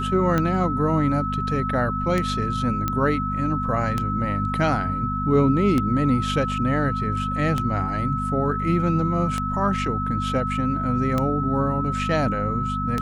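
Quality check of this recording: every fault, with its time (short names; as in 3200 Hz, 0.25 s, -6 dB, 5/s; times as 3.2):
hum 50 Hz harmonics 5 -28 dBFS
tick 33 1/3 rpm -10 dBFS
tone 1300 Hz -26 dBFS
2.88 pop -10 dBFS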